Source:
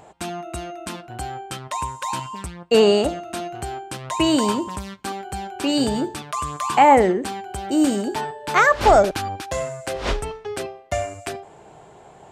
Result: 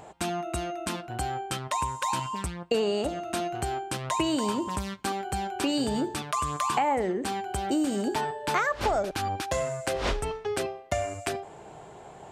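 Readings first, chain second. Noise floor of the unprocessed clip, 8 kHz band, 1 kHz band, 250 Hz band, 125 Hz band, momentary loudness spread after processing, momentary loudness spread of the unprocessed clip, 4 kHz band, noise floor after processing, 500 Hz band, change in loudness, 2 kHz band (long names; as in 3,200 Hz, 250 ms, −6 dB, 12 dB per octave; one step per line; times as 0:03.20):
−47 dBFS, −3.5 dB, −7.5 dB, −7.0 dB, −3.5 dB, 7 LU, 17 LU, −6.0 dB, −47 dBFS, −9.0 dB, −8.0 dB, −8.0 dB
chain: downward compressor 6 to 1, threshold −24 dBFS, peak gain reduction 14 dB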